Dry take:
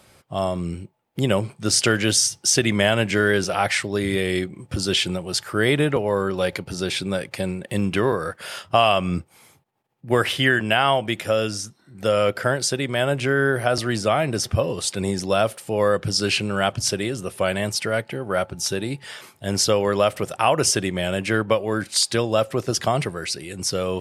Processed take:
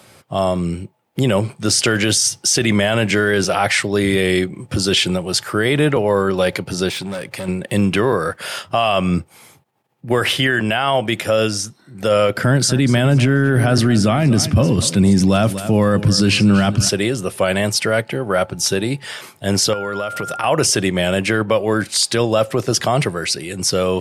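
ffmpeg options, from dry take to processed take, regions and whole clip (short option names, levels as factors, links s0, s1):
-filter_complex "[0:a]asettb=1/sr,asplit=3[s0][s1][s2];[s0]atrim=end=6.894[s3];[s1]atrim=start=6.89:end=7.48,asetpts=PTS-STARTPTS,afade=t=in:d=0.004:c=qsin,afade=t=out:st=0.586:d=0.004:c=qsin,volume=16.8,asoftclip=hard,volume=0.0596,acompressor=threshold=0.0282:ratio=4:attack=3.2:release=140:knee=1:detection=peak[s4];[s2]atrim=start=7.476[s5];[s3][s4]acrossfade=d=0.004:c1=hsin:c2=qsin[s6];[s6][s5]acrossfade=d=0.004:c1=qsin:c2=hsin,asettb=1/sr,asplit=3[s7][s8][s9];[s7]atrim=end=12.374[s10];[s8]atrim=start=12.37:end=16.89,asetpts=PTS-STARTPTS,afade=t=in:d=0.004:c=qsin,afade=t=out:st=4.516:d=0.004:c=qsin,lowshelf=f=340:t=q:w=1.5:g=8.5,aecho=1:1:242|484|726:0.158|0.0571|0.0205,atrim=end_sample=199332[s11];[s9]atrim=start=16.886[s12];[s10][s11]acrossfade=d=0.004:c1=hsin:c2=qsin[s13];[s13][s12]acrossfade=d=0.004:c1=qsin:c2=hsin,asettb=1/sr,asplit=3[s14][s15][s16];[s14]atrim=end=19.734[s17];[s15]atrim=start=19.73:end=20.44,asetpts=PTS-STARTPTS,afade=t=in:d=0.004:c=qsin,afade=t=out:st=0.706:d=0.004:c=qsin,acompressor=threshold=0.0447:ratio=8:attack=3.2:release=140:knee=1:detection=peak,aeval=exprs='val(0)+0.0224*sin(2*PI*1400*n/s)':c=same[s18];[s16]atrim=start=20.436[s19];[s17][s18]acrossfade=d=0.004:c1=hsin:c2=qsin[s20];[s20][s19]acrossfade=d=0.004:c1=qsin:c2=hsin,highpass=f=85:w=0.5412,highpass=f=85:w=1.3066,alimiter=limit=0.211:level=0:latency=1:release=13,volume=2.24"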